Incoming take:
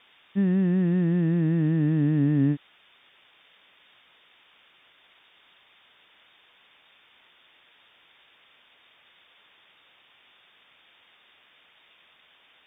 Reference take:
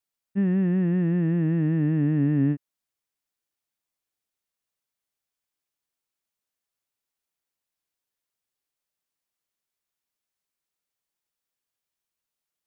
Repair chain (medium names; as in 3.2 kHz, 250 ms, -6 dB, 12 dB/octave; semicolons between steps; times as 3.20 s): noise print and reduce 27 dB